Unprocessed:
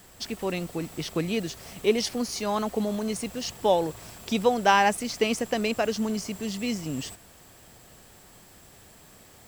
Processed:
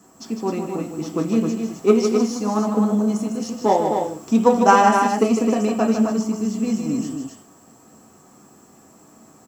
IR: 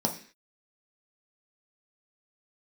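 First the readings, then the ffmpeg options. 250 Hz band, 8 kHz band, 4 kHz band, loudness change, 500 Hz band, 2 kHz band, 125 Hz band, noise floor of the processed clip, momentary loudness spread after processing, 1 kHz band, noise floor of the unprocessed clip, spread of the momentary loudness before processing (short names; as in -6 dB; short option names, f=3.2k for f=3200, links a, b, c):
+10.5 dB, +2.0 dB, -4.0 dB, +7.5 dB, +6.5 dB, +1.5 dB, +6.5 dB, -51 dBFS, 12 LU, +8.0 dB, -53 dBFS, 12 LU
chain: -filter_complex "[0:a]aeval=exprs='0.531*(cos(1*acos(clip(val(0)/0.531,-1,1)))-cos(1*PI/2))+0.0596*(cos(3*acos(clip(val(0)/0.531,-1,1)))-cos(3*PI/2))+0.0188*(cos(7*acos(clip(val(0)/0.531,-1,1)))-cos(7*PI/2))':c=same,aecho=1:1:154.5|262.4:0.447|0.501[a];[1:a]atrim=start_sample=2205,asetrate=57330,aresample=44100[b];[a][b]afir=irnorm=-1:irlink=0"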